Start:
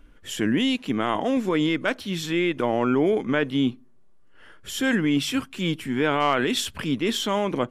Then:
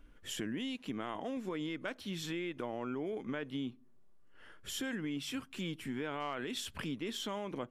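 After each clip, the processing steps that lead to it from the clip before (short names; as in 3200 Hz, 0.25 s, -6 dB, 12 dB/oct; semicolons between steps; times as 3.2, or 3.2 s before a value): compressor 4:1, threshold -30 dBFS, peak gain reduction 11 dB; gain -7 dB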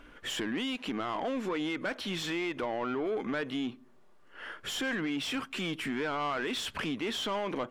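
in parallel at 0 dB: limiter -37.5 dBFS, peak gain reduction 11.5 dB; on the sum: overdrive pedal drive 17 dB, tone 2600 Hz, clips at -23.5 dBFS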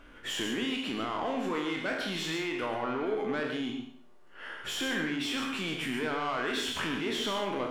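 spectral trails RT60 0.55 s; non-linear reverb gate 0.16 s rising, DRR 4 dB; gain -2 dB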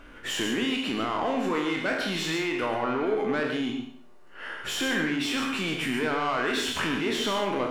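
notch 3300 Hz, Q 17; gain +5 dB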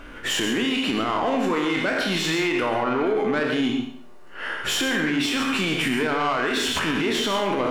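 limiter -22.5 dBFS, peak gain reduction 7 dB; gain +7.5 dB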